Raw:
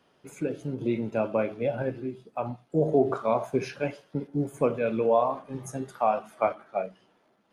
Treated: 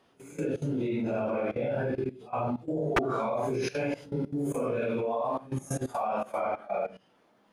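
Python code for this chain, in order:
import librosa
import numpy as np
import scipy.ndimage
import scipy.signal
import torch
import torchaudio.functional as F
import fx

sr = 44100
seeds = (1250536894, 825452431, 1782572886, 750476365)

y = fx.phase_scramble(x, sr, seeds[0], window_ms=200)
y = fx.high_shelf(y, sr, hz=5600.0, db=5.0, at=(3.54, 6.07))
y = fx.level_steps(y, sr, step_db=18)
y = 10.0 ** (-23.0 / 20.0) * (np.abs((y / 10.0 ** (-23.0 / 20.0) + 3.0) % 4.0 - 2.0) - 1.0)
y = F.gain(torch.from_numpy(y), 6.5).numpy()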